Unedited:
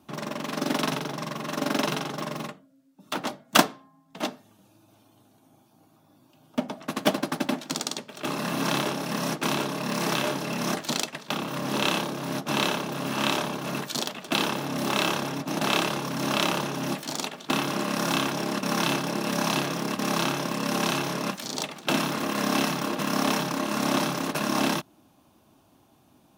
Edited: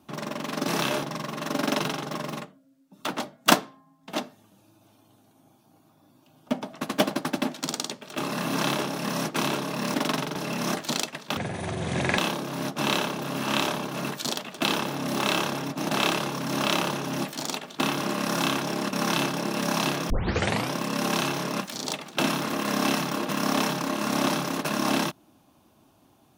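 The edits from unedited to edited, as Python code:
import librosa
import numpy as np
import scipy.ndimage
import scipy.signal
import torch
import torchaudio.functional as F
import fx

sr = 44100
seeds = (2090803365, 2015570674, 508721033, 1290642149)

y = fx.edit(x, sr, fx.swap(start_s=0.68, length_s=0.42, other_s=10.01, other_length_s=0.35),
    fx.speed_span(start_s=11.37, length_s=0.51, speed=0.63),
    fx.tape_start(start_s=19.8, length_s=0.62), tone=tone)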